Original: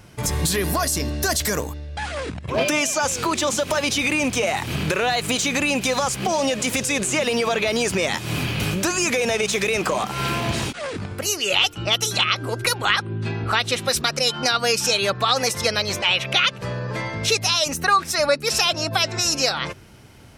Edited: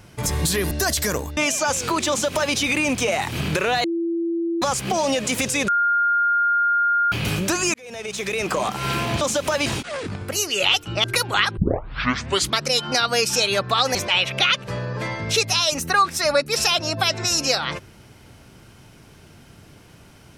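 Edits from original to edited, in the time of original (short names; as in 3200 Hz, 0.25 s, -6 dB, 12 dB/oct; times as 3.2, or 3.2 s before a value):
0.71–1.14 cut
1.8–2.72 cut
3.44–3.89 copy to 10.56
5.19–5.97 bleep 336 Hz -20.5 dBFS
7.03–8.47 bleep 1410 Hz -16 dBFS
9.09–9.98 fade in
11.94–12.55 cut
13.08 tape start 1.04 s
15.46–15.89 cut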